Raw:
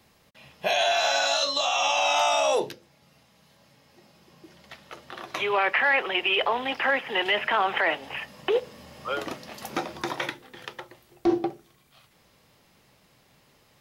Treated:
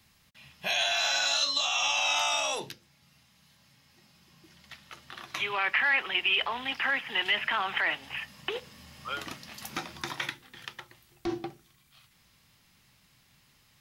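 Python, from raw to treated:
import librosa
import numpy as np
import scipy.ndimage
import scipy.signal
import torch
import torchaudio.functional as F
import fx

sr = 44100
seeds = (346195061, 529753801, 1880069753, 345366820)

y = fx.peak_eq(x, sr, hz=500.0, db=-14.5, octaves=1.8)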